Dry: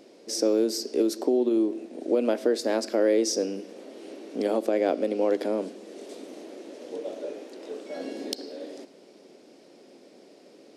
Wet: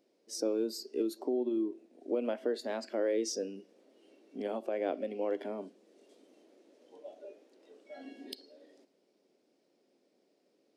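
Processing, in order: spectral noise reduction 12 dB; trim -8.5 dB

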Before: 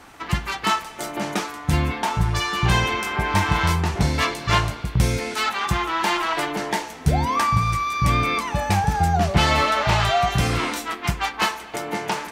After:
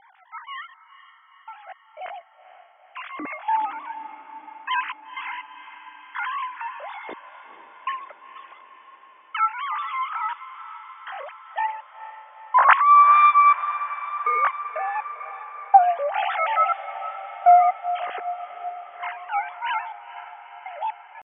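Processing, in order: formants replaced by sine waves; low-pass 2.8 kHz 12 dB/octave; tempo 0.58×; trance gate "xxx...x.x...x" 61 bpm -60 dB; on a send: echo that smears into a reverb 468 ms, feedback 68%, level -13.5 dB

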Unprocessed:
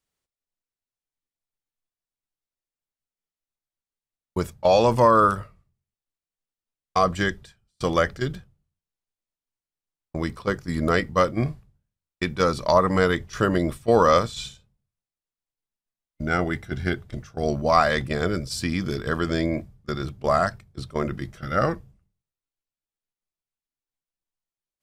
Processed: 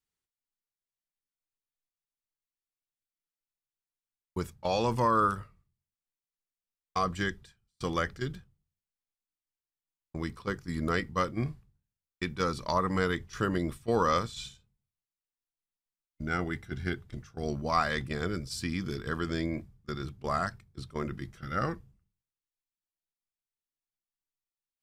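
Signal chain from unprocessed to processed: peaking EQ 610 Hz -8 dB 0.55 oct; trim -7 dB

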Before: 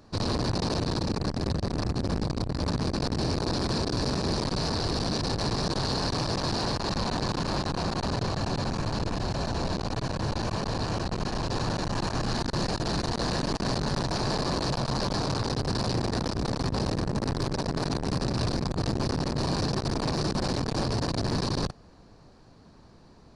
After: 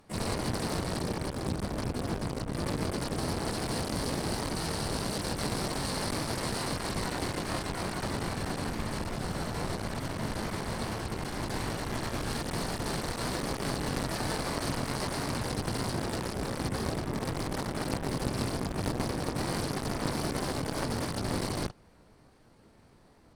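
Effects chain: harmony voices -7 st -11 dB, +5 st -10 dB, +12 st -2 dB; Chebyshev shaper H 3 -16 dB, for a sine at -11.5 dBFS; trim -2.5 dB

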